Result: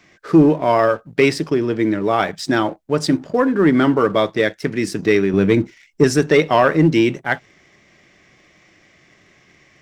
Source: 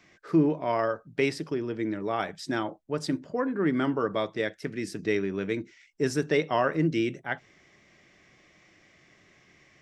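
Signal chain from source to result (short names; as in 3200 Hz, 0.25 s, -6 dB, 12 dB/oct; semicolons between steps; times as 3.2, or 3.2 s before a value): 5.33–6.04 low shelf 290 Hz +9 dB; sample leveller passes 1; gain +8.5 dB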